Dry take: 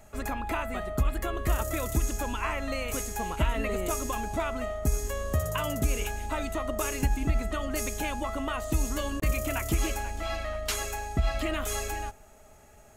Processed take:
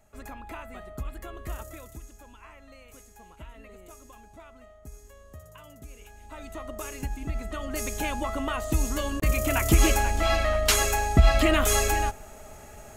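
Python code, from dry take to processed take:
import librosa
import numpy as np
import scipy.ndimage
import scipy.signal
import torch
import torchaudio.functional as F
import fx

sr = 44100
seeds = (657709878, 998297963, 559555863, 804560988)

y = fx.gain(x, sr, db=fx.line((1.57, -9.0), (2.09, -18.5), (5.99, -18.5), (6.58, -6.5), (7.2, -6.5), (8.04, 2.0), (9.2, 2.0), (9.88, 9.0)))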